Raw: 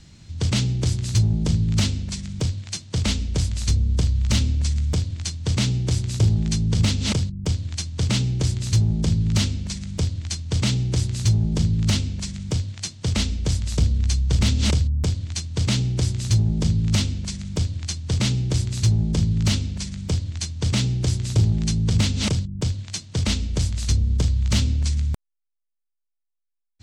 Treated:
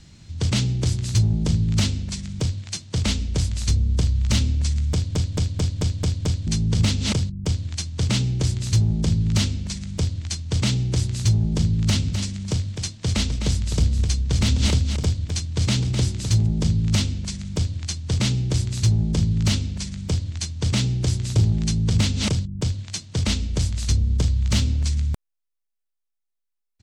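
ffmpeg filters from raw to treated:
-filter_complex "[0:a]asplit=3[a][b][c];[a]afade=t=out:st=11.96:d=0.02[d];[b]aecho=1:1:256:0.398,afade=t=in:st=11.96:d=0.02,afade=t=out:st=16.45:d=0.02[e];[c]afade=t=in:st=16.45:d=0.02[f];[d][e][f]amix=inputs=3:normalize=0,asettb=1/sr,asplit=3[g][h][i];[g]atrim=end=24.464[j];[h]atrim=start=24.46:end=24.93,asetpts=PTS-STARTPTS,afade=t=in:d=0.004:c=qsin,afade=t=out:st=0.466:d=0.004:c=qsin,aeval=exprs='sgn(val(0))*max(abs(val(0))-0.00335,0)':c=same[k];[i]atrim=start=24.926[l];[j][k]acrossfade=d=0.004:c1=hsin:c2=qsin[m];[m][l]acrossfade=d=0.004:c1=qsin:c2=hsin,asplit=8[n][o][p][q][r][s][t][u];[n]atrim=end=5.152[v];[o]atrim=start=4.928:end=5.152[w];[p]atrim=start=4.928:end=5.152[x];[q]atrim=start=4.928:end=5.152[y];[r]atrim=start=4.928:end=5.152[z];[s]atrim=start=4.928:end=5.152[aa];[t]atrim=start=4.928:end=5.152[ab];[u]atrim=start=6.468[ac];[v][w]acrossfade=d=0.004:c1=hsin:c2=hsin[ad];[ad][x]acrossfade=d=0.004:c1=hsin:c2=hsin[ae];[ae][y]acrossfade=d=0.004:c1=hsin:c2=hsin[af];[af][z]acrossfade=d=0.004:c1=hsin:c2=hsin[ag];[ag][aa]acrossfade=d=0.004:c1=hsin:c2=hsin[ah];[ah][ab]acrossfade=d=0.004:c1=hsin:c2=hsin[ai];[ai][ac]acrossfade=d=0.004:c1=hsin:c2=hsin"

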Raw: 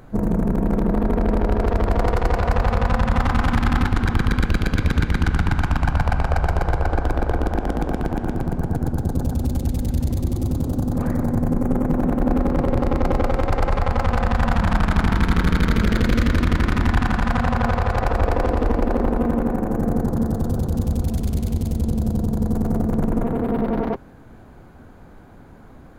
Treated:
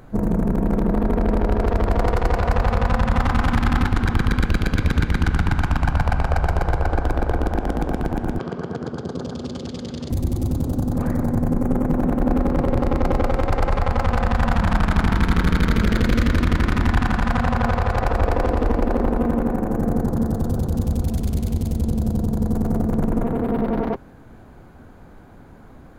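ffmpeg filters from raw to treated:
-filter_complex "[0:a]asettb=1/sr,asplit=3[a][b][c];[a]atrim=end=8.394[d];[b]atrim=start=8.39:end=10.1,asetpts=PTS-STARTPTS,afade=t=in:d=0.004:c=qsin,afade=t=out:st=1.706:d=0.004:c=qsin,highpass=200,equalizer=f=290:t=q:w=4:g=-6,equalizer=f=420:t=q:w=4:g=6,equalizer=f=810:t=q:w=4:g=-6,equalizer=f=1.2k:t=q:w=4:g=7,equalizer=f=3.2k:t=q:w=4:g=9,equalizer=f=4.8k:t=q:w=4:g=6,lowpass=f=6.6k:w=0.5412,lowpass=f=6.6k:w=1.3066[e];[c]atrim=start=10.096[f];[d][e]acrossfade=d=0.004:c1=hsin:c2=qsin[g];[g][f]acrossfade=d=0.004:c1=qsin:c2=hsin"

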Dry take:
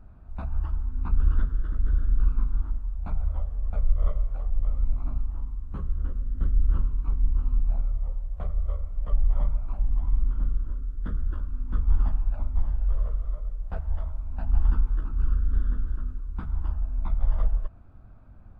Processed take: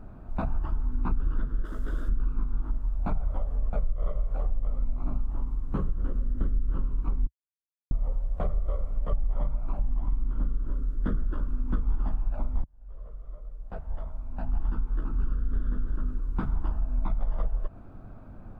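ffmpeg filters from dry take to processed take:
-filter_complex "[0:a]asplit=3[a][b][c];[a]afade=t=out:st=1.64:d=0.02[d];[b]bass=f=250:g=-10,treble=f=4k:g=15,afade=t=in:st=1.64:d=0.02,afade=t=out:st=2.08:d=0.02[e];[c]afade=t=in:st=2.08:d=0.02[f];[d][e][f]amix=inputs=3:normalize=0,asplit=4[g][h][i][j];[g]atrim=end=7.27,asetpts=PTS-STARTPTS,afade=t=out:st=7.266:d=0.004:c=hsin[k];[h]atrim=start=7.27:end=7.91,asetpts=PTS-STARTPTS,volume=0[l];[i]atrim=start=7.91:end=12.64,asetpts=PTS-STARTPTS,afade=t=in:d=0.004:c=hsin,afade=t=out:st=4.726:d=0.004:c=hsin[m];[j]atrim=start=12.64,asetpts=PTS-STARTPTS,afade=t=in:d=3.68[n];[k][l][m][n]concat=n=4:v=0:a=1,equalizer=f=66:w=2.3:g=-8.5,acompressor=threshold=-27dB:ratio=6,equalizer=f=370:w=0.5:g=6.5,volume=5dB"

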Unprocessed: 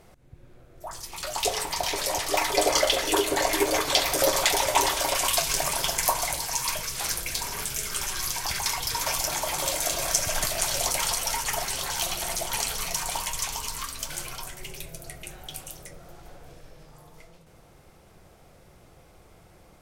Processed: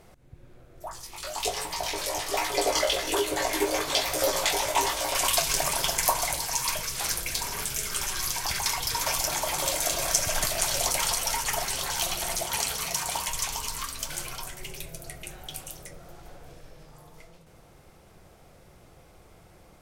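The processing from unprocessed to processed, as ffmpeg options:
-filter_complex "[0:a]asplit=3[a][b][c];[a]afade=t=out:st=0.89:d=0.02[d];[b]flanger=delay=16.5:depth=3.5:speed=1.2,afade=t=in:st=0.89:d=0.02,afade=t=out:st=5.13:d=0.02[e];[c]afade=t=in:st=5.13:d=0.02[f];[d][e][f]amix=inputs=3:normalize=0,asettb=1/sr,asplit=3[g][h][i];[g]atrim=end=12.424[j];[h]atrim=start=12.42:end=13.27,asetpts=PTS-STARTPTS,afade=t=in:d=0.004:c=qsin,afade=t=out:st=0.846:d=0.004:c=qsin,highpass=51[k];[i]atrim=start=13.266[l];[j][k]acrossfade=d=0.004:c1=hsin:c2=qsin[m];[m][l]acrossfade=d=0.004:c1=qsin:c2=hsin"

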